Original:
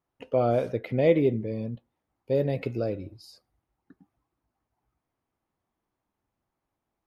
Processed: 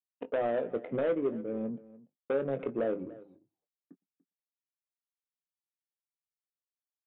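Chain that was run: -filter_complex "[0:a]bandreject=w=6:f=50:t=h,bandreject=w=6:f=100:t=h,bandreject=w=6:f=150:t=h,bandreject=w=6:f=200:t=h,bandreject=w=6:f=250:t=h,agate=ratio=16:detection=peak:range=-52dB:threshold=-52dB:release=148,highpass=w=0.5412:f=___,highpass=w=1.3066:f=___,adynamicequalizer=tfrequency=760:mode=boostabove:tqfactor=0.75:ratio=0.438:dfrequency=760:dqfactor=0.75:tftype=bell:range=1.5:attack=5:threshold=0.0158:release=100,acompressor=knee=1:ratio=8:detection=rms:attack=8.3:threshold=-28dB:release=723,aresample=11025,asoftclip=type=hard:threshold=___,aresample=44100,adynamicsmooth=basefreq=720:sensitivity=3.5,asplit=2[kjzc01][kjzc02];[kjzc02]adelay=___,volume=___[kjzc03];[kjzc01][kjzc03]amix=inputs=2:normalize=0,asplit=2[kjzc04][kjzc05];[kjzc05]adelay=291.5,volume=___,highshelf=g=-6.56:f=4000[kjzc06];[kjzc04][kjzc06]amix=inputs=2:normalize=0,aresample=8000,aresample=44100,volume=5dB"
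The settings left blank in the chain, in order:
180, 180, -29.5dB, 22, -11dB, -19dB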